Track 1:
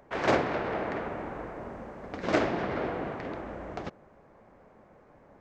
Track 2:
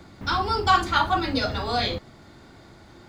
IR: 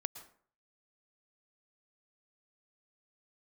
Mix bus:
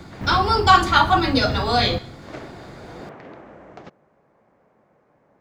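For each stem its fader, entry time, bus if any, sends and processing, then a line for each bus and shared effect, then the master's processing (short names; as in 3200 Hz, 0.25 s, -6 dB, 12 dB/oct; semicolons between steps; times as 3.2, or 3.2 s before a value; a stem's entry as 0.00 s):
2.82 s -11 dB -> 3.03 s -3.5 dB, 0.00 s, no send, HPF 150 Hz 6 dB/oct
+2.0 dB, 0.00 s, send -4 dB, dry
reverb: on, RT60 0.50 s, pre-delay 0.102 s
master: bell 140 Hz +4.5 dB 0.57 oct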